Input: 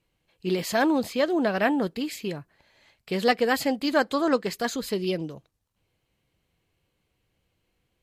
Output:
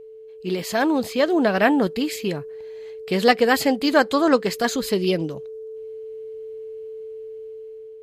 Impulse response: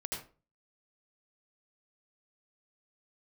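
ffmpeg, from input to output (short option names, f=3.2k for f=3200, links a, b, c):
-af "aeval=exprs='val(0)+0.0112*sin(2*PI*440*n/s)':c=same,dynaudnorm=f=440:g=5:m=7dB"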